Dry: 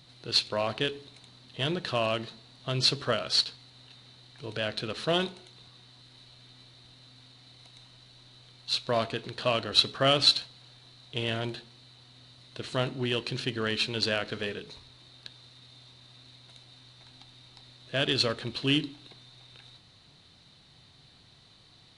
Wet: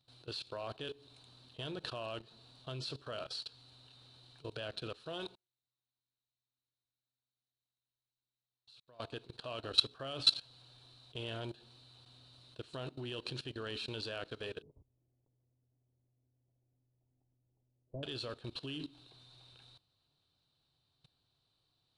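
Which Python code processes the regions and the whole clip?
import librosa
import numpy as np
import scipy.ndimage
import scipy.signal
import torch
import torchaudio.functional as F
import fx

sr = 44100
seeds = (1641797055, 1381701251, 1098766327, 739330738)

y = fx.chain(x, sr, fx.level_steps(step_db=22),
    fx.upward_expand(threshold_db=-57.0, expansion=2.5), at=(5.35, 9.0))
y = fx.chain(y, sr, fx.block_float(bits=3),
    fx.gaussian_blur(sigma=15.0), at=(14.62, 18.03))
y = fx.graphic_eq_31(y, sr, hz=(200, 2000, 6300), db=(-10, -11, -5))
y = fx.level_steps(y, sr, step_db=19)
y = y * librosa.db_to_amplitude(-3.5)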